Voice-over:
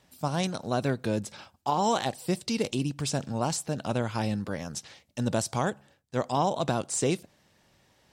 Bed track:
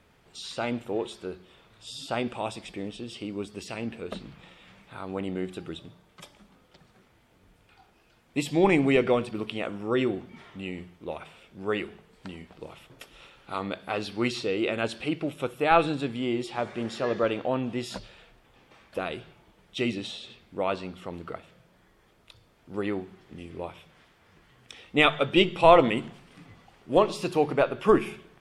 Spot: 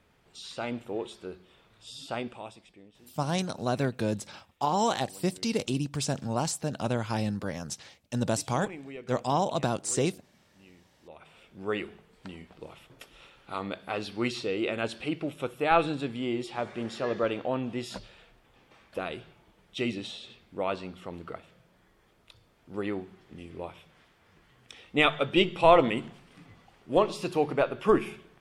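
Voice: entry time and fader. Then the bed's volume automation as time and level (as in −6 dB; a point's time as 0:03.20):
2.95 s, −0.5 dB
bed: 0:02.15 −4 dB
0:02.91 −20.5 dB
0:10.97 −20.5 dB
0:11.39 −2.5 dB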